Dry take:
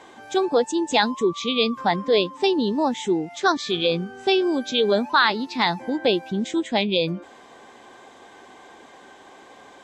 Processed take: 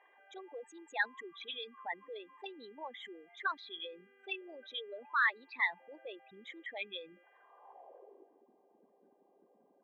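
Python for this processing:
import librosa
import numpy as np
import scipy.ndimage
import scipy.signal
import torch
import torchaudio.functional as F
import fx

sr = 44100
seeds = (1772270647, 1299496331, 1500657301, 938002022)

y = fx.envelope_sharpen(x, sr, power=3.0)
y = fx.dmg_buzz(y, sr, base_hz=400.0, harmonics=8, level_db=-56.0, tilt_db=-4, odd_only=False)
y = fx.filter_sweep_bandpass(y, sr, from_hz=1900.0, to_hz=200.0, start_s=7.31, end_s=8.46, q=3.8)
y = F.gain(torch.from_numpy(y), -4.0).numpy()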